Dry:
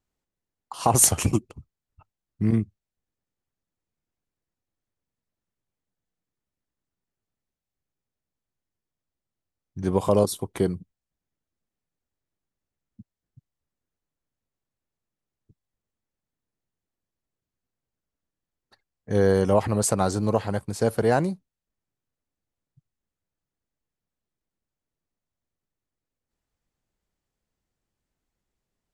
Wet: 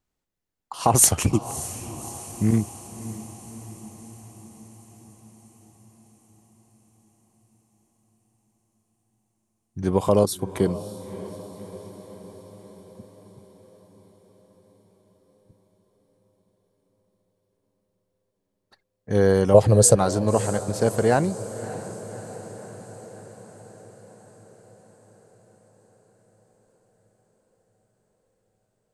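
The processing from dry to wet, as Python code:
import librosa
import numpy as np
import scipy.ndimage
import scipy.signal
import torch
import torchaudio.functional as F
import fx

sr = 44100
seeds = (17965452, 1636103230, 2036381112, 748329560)

y = fx.graphic_eq_10(x, sr, hz=(125, 250, 500, 1000, 2000, 4000, 8000), db=(10, -4, 11, -5, -7, 4, 7), at=(19.54, 19.96))
y = fx.echo_diffused(y, sr, ms=599, feedback_pct=64, wet_db=-14.5)
y = F.gain(torch.from_numpy(y), 1.5).numpy()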